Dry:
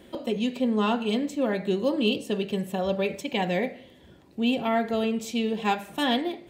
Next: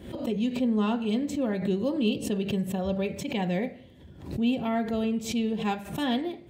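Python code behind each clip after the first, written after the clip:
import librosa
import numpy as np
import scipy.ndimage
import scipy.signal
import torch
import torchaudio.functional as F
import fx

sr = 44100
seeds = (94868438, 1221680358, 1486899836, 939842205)

y = fx.peak_eq(x, sr, hz=84.0, db=13.5, octaves=2.8)
y = fx.pre_swell(y, sr, db_per_s=95.0)
y = y * librosa.db_to_amplitude(-6.5)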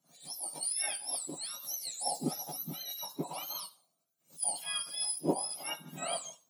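y = fx.octave_mirror(x, sr, pivot_hz=1500.0)
y = fx.band_widen(y, sr, depth_pct=100)
y = y * librosa.db_to_amplitude(-4.5)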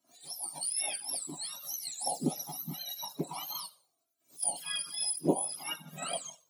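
y = fx.env_flanger(x, sr, rest_ms=3.1, full_db=-30.0)
y = y * librosa.db_to_amplitude(3.5)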